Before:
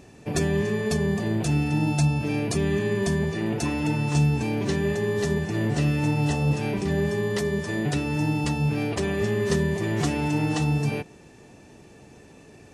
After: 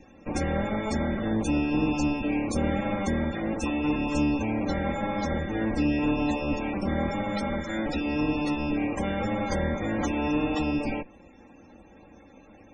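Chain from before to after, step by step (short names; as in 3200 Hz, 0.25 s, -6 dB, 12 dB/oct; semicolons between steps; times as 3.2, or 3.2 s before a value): minimum comb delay 3.7 ms; loudest bins only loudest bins 64; notch 2900 Hz, Q 14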